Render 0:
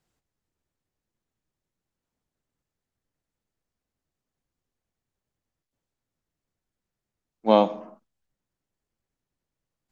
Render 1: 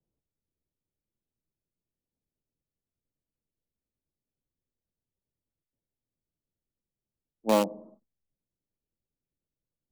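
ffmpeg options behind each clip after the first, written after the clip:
-filter_complex "[0:a]bandreject=f=730:w=12,acrossover=split=140|770[s0][s1][s2];[s2]acrusher=bits=3:mix=0:aa=0.000001[s3];[s0][s1][s3]amix=inputs=3:normalize=0,volume=0.562"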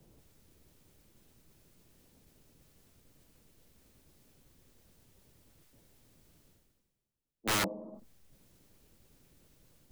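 -af "areverse,acompressor=mode=upward:threshold=0.00891:ratio=2.5,areverse,aeval=exprs='(mod(15.8*val(0)+1,2)-1)/15.8':c=same"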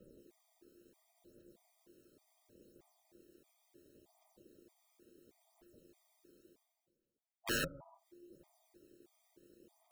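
-af "aphaser=in_gain=1:out_gain=1:delay=1.1:decay=0.57:speed=0.71:type=triangular,aeval=exprs='val(0)*sin(2*PI*350*n/s)':c=same,afftfilt=real='re*gt(sin(2*PI*1.6*pts/sr)*(1-2*mod(floor(b*sr/1024/630),2)),0)':imag='im*gt(sin(2*PI*1.6*pts/sr)*(1-2*mod(floor(b*sr/1024/630),2)),0)':win_size=1024:overlap=0.75,volume=0.75"

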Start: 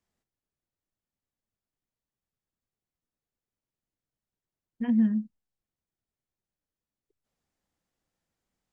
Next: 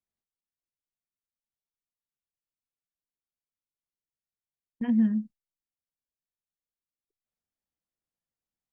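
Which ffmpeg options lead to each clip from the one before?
-af "agate=range=0.2:threshold=0.00891:ratio=16:detection=peak"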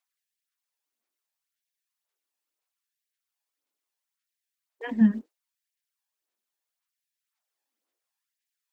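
-af "aphaser=in_gain=1:out_gain=1:delay=1.2:decay=0.42:speed=1.9:type=sinusoidal,afftfilt=real='re*gte(b*sr/1024,210*pow(1600/210,0.5+0.5*sin(2*PI*0.74*pts/sr)))':imag='im*gte(b*sr/1024,210*pow(1600/210,0.5+0.5*sin(2*PI*0.74*pts/sr)))':win_size=1024:overlap=0.75,volume=2.37"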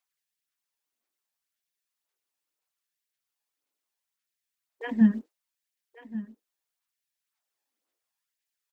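-af "aecho=1:1:1135:0.168"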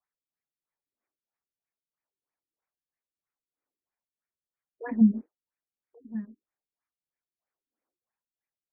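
-af "afftfilt=real='re*lt(b*sr/1024,380*pow(2600/380,0.5+0.5*sin(2*PI*3.1*pts/sr)))':imag='im*lt(b*sr/1024,380*pow(2600/380,0.5+0.5*sin(2*PI*3.1*pts/sr)))':win_size=1024:overlap=0.75"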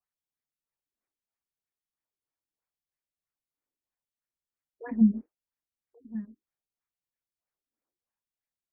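-af "lowshelf=f=170:g=8.5,volume=0.596"

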